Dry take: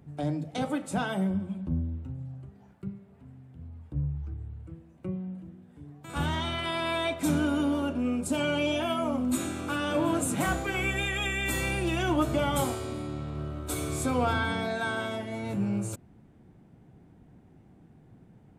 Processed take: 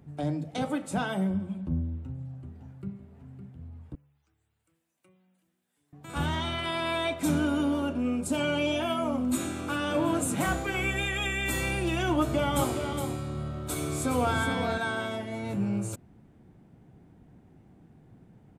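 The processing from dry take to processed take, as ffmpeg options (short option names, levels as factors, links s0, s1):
-filter_complex "[0:a]asplit=2[s0][s1];[s1]afade=t=in:st=1.87:d=0.01,afade=t=out:st=2.93:d=0.01,aecho=0:1:560|1120|1680|2240:0.334965|0.117238|0.0410333|0.0143616[s2];[s0][s2]amix=inputs=2:normalize=0,asettb=1/sr,asplit=3[s3][s4][s5];[s3]atrim=end=3.954[s6];[s4]atrim=start=3.95:end=5.93,asetpts=PTS-STARTPTS,afade=t=in:d=0.004:c=qsin,afade=t=out:st=1.976:d=0.004:c=qsin,aderivative[s7];[s5]atrim=start=5.926[s8];[s6][s7]acrossfade=d=0.004:c1=hsin:c2=qsin[s9];[s9][s8]acrossfade=d=0.004:c1=qsin:c2=hsin,asettb=1/sr,asplit=3[s10][s11][s12];[s10]atrim=end=12.154[s13];[s11]atrim=start=12.15:end=14.78,asetpts=PTS-STARTPTS,afade=t=in:d=0.004:c=qsin,afade=t=out:st=2.626:d=0.004:c=qsin,aecho=1:1:415:0.447,atrim=end_sample=115983[s14];[s12]atrim=start=14.776[s15];[s13][s14]acrossfade=d=0.004:c1=hsin:c2=qsin[s16];[s16][s15]acrossfade=d=0.004:c1=qsin:c2=hsin"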